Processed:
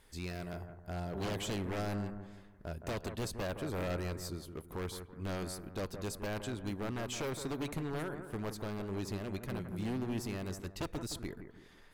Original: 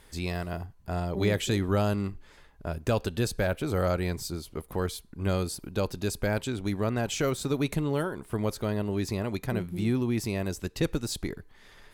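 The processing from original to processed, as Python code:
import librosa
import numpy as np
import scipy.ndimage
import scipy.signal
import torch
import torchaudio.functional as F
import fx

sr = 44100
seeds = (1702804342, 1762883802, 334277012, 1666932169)

y = 10.0 ** (-23.0 / 20.0) * (np.abs((x / 10.0 ** (-23.0 / 20.0) + 3.0) % 4.0 - 2.0) - 1.0)
y = fx.echo_bbd(y, sr, ms=166, stages=2048, feedback_pct=40, wet_db=-8.5)
y = y * librosa.db_to_amplitude(-8.0)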